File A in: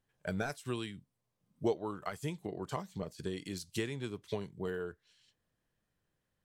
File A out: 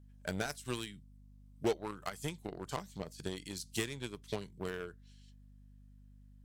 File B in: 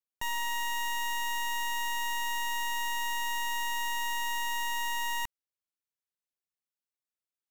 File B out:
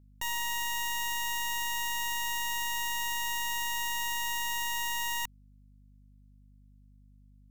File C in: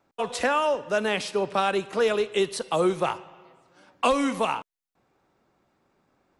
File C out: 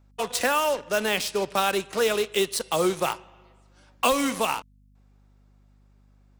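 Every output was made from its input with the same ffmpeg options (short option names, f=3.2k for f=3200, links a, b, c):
-filter_complex "[0:a]highshelf=f=10k:g=-10.5,asplit=2[a][b];[b]acrusher=bits=4:mix=0:aa=0.5,volume=-3.5dB[c];[a][c]amix=inputs=2:normalize=0,crystalizer=i=3:c=0,aeval=exprs='val(0)+0.00282*(sin(2*PI*50*n/s)+sin(2*PI*2*50*n/s)/2+sin(2*PI*3*50*n/s)/3+sin(2*PI*4*50*n/s)/4+sin(2*PI*5*50*n/s)/5)':c=same,volume=-5.5dB"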